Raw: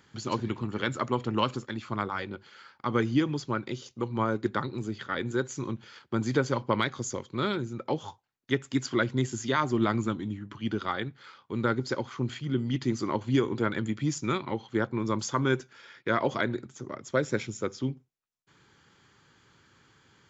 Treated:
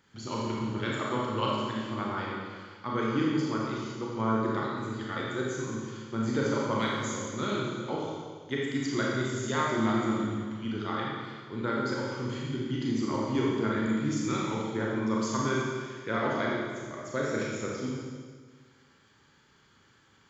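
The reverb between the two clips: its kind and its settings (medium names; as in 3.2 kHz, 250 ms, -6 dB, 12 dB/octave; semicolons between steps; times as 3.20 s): Schroeder reverb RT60 1.7 s, combs from 28 ms, DRR -4.5 dB; trim -6.5 dB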